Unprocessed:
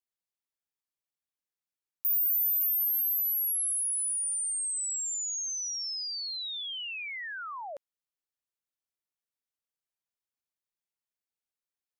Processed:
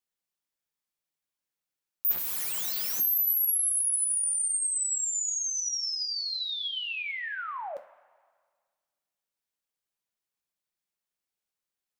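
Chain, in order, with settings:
0:02.11–0:03.00: wrap-around overflow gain 29.5 dB
coupled-rooms reverb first 0.31 s, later 1.7 s, from −16 dB, DRR 7 dB
level +2.5 dB

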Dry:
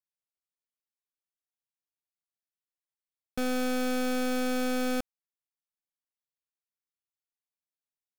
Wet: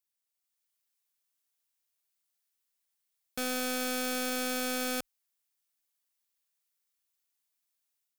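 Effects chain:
spectral tilt +2.5 dB per octave
brickwall limiter −22 dBFS, peak gain reduction 7 dB
automatic gain control gain up to 5 dB

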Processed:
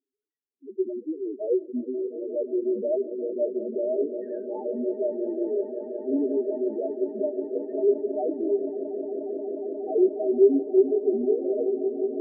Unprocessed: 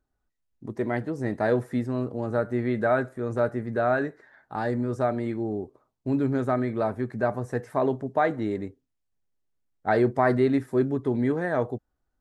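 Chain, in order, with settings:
loudspeaker in its box 260–2,400 Hz, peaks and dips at 290 Hz +4 dB, 410 Hz +9 dB, 750 Hz −5 dB, 1,300 Hz −4 dB
spectral peaks only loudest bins 2
echo that builds up and dies away 179 ms, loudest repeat 8, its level −16 dB

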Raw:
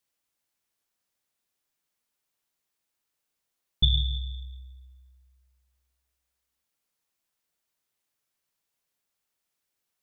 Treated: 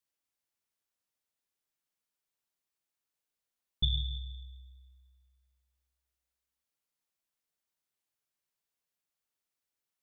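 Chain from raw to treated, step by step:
feedback echo with a high-pass in the loop 94 ms, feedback 72%, level −23 dB
level −7.5 dB

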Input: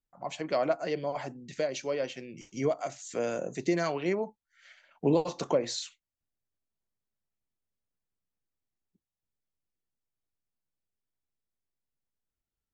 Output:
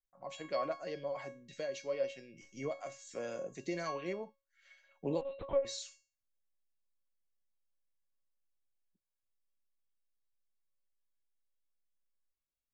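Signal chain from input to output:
tuned comb filter 550 Hz, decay 0.35 s, mix 90%
0:05.21–0:05.65: linear-prediction vocoder at 8 kHz pitch kept
level +7.5 dB

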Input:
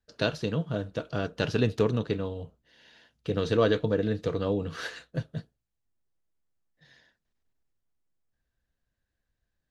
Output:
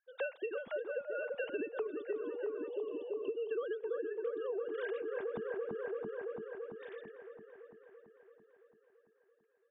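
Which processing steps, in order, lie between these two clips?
three sine waves on the formant tracks
delay with a low-pass on its return 336 ms, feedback 67%, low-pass 1,500 Hz, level −6 dB
gain on a spectral selection 0:02.68–0:03.51, 1,200–2,600 Hz −23 dB
downward compressor 12 to 1, threshold −39 dBFS, peak gain reduction 24.5 dB
level +4 dB

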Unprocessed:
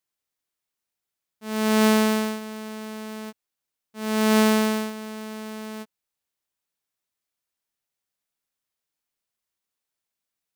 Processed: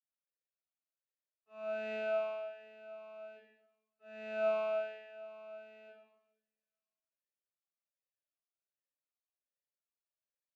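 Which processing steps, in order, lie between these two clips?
far-end echo of a speakerphone 190 ms, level −18 dB
convolution reverb RT60 0.85 s, pre-delay 47 ms
formant filter swept between two vowels a-e 1.3 Hz
level −5 dB

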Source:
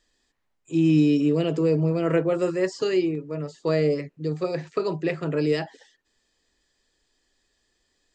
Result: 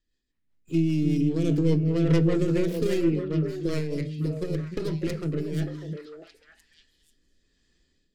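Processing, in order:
stylus tracing distortion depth 0.49 ms
low-pass filter 2,000 Hz 6 dB per octave
parametric band 780 Hz −15 dB 2.1 octaves
automatic gain control gain up to 13 dB
brickwall limiter −12.5 dBFS, peak gain reduction 10 dB
0:03.58–0:05.62: downward compressor, threshold −21 dBFS, peak gain reduction 5.5 dB
tuned comb filter 84 Hz, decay 0.34 s, harmonics all, mix 40%
rotating-speaker cabinet horn 5 Hz, later 1.1 Hz, at 0:03.67
echo through a band-pass that steps 300 ms, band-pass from 200 Hz, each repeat 1.4 octaves, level −1.5 dB

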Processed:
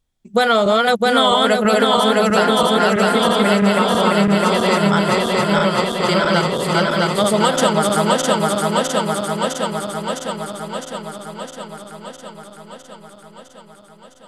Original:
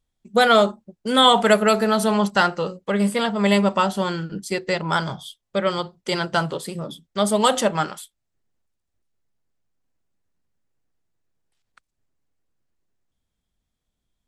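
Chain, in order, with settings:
feedback delay that plays each chunk backwards 329 ms, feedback 82%, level −1 dB
downward compressor, threshold −15 dBFS, peak gain reduction 7.5 dB
level +4 dB

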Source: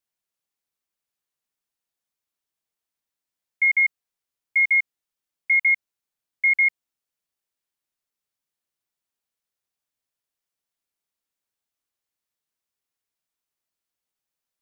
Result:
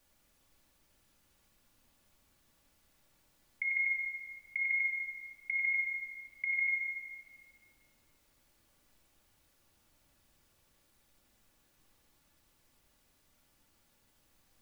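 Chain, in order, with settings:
compressor whose output falls as the input rises −29 dBFS, ratio −1
background noise pink −78 dBFS
rectangular room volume 3,500 cubic metres, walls mixed, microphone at 2.4 metres

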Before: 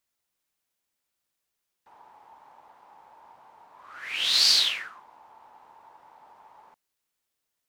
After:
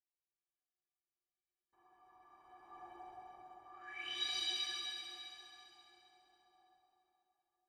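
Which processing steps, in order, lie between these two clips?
source passing by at 0:02.89, 25 m/s, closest 5.5 metres
high-pass filter 86 Hz 6 dB per octave
RIAA equalisation playback
notch filter 4,100 Hz, Q 22
stiff-string resonator 350 Hz, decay 0.22 s, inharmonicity 0.03
delay with a high-pass on its return 67 ms, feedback 83%, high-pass 3,800 Hz, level −5 dB
convolution reverb RT60 3.8 s, pre-delay 118 ms, DRR 1.5 dB
level +15 dB

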